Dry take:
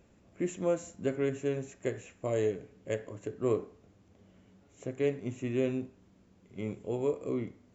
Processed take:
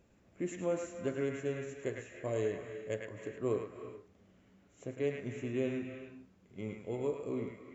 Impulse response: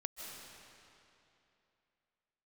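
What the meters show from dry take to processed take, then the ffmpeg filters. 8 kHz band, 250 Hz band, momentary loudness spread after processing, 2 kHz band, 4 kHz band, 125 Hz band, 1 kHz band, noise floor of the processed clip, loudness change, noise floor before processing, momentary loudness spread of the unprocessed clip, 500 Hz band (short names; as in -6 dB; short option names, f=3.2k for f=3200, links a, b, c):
n/a, -4.0 dB, 13 LU, -0.5 dB, -3.0 dB, -4.0 dB, -3.0 dB, -66 dBFS, -4.0 dB, -63 dBFS, 11 LU, -4.0 dB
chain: -filter_complex "[0:a]asplit=2[a][b];[b]equalizer=f=1.8k:t=o:w=1.7:g=12.5[c];[1:a]atrim=start_sample=2205,afade=t=out:st=0.39:d=0.01,atrim=end_sample=17640,adelay=105[d];[c][d]afir=irnorm=-1:irlink=0,volume=-8dB[e];[a][e]amix=inputs=2:normalize=0,volume=-4.5dB"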